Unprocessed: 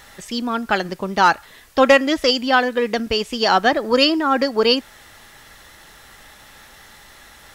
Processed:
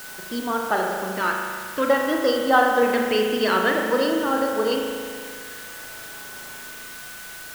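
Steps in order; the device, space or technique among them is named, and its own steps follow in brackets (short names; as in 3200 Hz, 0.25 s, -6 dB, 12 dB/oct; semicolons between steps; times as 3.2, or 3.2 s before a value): shortwave radio (BPF 250–2700 Hz; tremolo 0.34 Hz, depth 57%; LFO notch square 0.53 Hz 780–2400 Hz; whine 1500 Hz -42 dBFS; white noise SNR 14 dB); spring tank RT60 2 s, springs 37 ms, chirp 45 ms, DRR 0.5 dB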